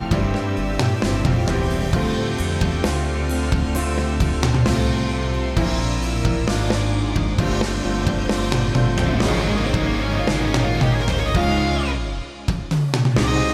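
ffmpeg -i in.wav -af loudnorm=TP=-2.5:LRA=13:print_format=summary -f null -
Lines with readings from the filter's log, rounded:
Input Integrated:    -20.5 LUFS
Input True Peak:      -6.9 dBTP
Input LRA:             1.3 LU
Input Threshold:     -30.5 LUFS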